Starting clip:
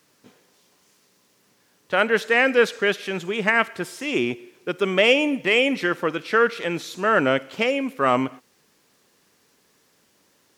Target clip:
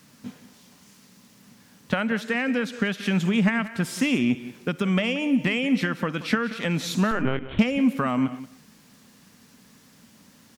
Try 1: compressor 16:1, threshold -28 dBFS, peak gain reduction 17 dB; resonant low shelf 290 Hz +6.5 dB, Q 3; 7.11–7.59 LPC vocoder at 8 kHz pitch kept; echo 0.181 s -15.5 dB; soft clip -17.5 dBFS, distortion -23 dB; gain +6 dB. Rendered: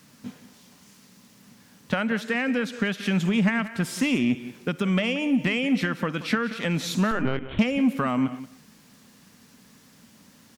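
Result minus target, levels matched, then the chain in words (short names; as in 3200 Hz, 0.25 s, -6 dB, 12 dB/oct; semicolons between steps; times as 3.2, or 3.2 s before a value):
soft clip: distortion +18 dB
compressor 16:1, threshold -28 dBFS, peak gain reduction 17 dB; resonant low shelf 290 Hz +6.5 dB, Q 3; 7.11–7.59 LPC vocoder at 8 kHz pitch kept; echo 0.181 s -15.5 dB; soft clip -7.5 dBFS, distortion -41 dB; gain +6 dB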